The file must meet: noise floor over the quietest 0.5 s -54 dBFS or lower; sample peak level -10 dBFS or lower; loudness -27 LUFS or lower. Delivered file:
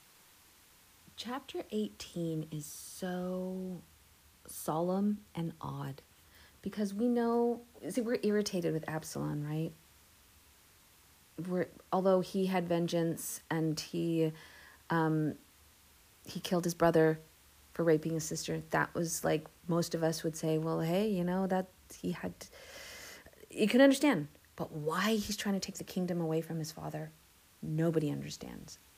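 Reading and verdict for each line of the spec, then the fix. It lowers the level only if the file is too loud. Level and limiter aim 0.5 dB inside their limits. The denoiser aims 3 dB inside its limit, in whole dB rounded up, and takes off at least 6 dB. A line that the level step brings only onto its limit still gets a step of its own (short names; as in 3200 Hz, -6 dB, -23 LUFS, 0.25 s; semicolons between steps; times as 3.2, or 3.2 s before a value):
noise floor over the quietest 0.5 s -63 dBFS: OK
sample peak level -13.5 dBFS: OK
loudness -34.0 LUFS: OK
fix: none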